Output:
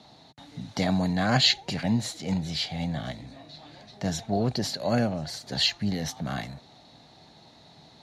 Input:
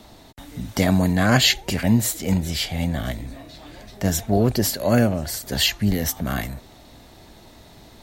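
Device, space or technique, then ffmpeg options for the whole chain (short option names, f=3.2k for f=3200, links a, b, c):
car door speaker: -af "highpass=110,equalizer=f=150:t=q:w=4:g=8,equalizer=f=360:t=q:w=4:g=-3,equalizer=f=790:t=q:w=4:g=6,equalizer=f=4.1k:t=q:w=4:g=9,equalizer=f=8.2k:t=q:w=4:g=-10,lowpass=f=8.9k:w=0.5412,lowpass=f=8.9k:w=1.3066,volume=-7.5dB"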